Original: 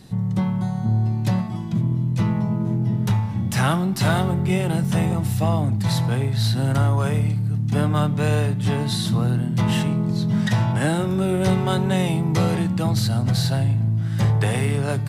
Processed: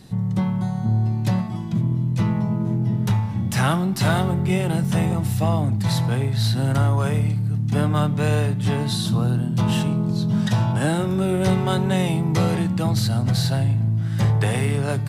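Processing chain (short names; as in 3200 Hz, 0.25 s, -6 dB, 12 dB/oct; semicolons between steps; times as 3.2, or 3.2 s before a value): 8.92–10.88 bell 2000 Hz -9 dB 0.31 oct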